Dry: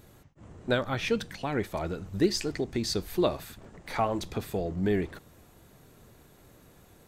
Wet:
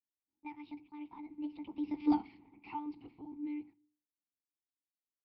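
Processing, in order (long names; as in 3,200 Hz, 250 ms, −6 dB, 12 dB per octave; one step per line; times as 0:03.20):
source passing by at 0:02.78, 44 m/s, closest 8.6 metres
downward expander −56 dBFS
one-pitch LPC vocoder at 8 kHz 220 Hz
on a send at −20 dB: low-shelf EQ 140 Hz +9.5 dB + convolution reverb RT60 0.60 s, pre-delay 3 ms
on the sum: wrong playback speed 33 rpm record played at 45 rpm
in parallel at +2.5 dB: downward compressor, threshold −46 dBFS, peak gain reduction 23 dB
on the sum: formant filter u
parametric band 560 Hz −5 dB 2.6 octaves
one half of a high-frequency compander decoder only
level +8.5 dB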